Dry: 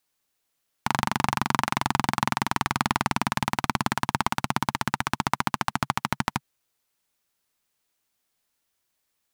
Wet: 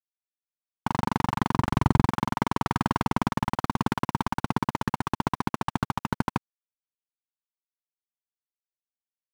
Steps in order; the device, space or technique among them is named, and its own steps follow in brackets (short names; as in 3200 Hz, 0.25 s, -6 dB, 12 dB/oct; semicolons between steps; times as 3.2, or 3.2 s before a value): 1.56–2.09 bell 64 Hz +13 dB 2.4 oct; early transistor amplifier (crossover distortion -43.5 dBFS; slew limiter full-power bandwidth 77 Hz); gain +4.5 dB